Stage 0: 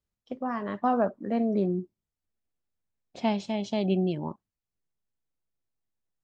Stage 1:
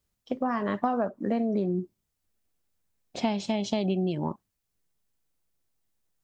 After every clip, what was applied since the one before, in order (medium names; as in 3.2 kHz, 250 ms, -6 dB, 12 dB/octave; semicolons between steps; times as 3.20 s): treble shelf 5.7 kHz +5.5 dB; compression, threshold -31 dBFS, peak gain reduction 10.5 dB; trim +7 dB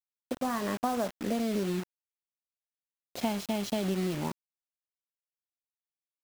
bit crusher 6-bit; trim -3.5 dB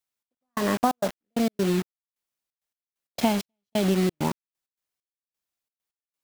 trance gate "xx...xxx.x..x." 132 bpm -60 dB; trim +8 dB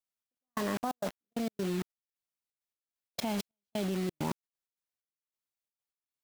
level held to a coarse grid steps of 16 dB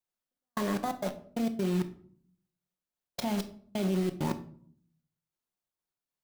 in parallel at -7.5 dB: sample-and-hold 16×; on the sum: simulated room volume 700 m³, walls furnished, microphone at 0.94 m; trim -1.5 dB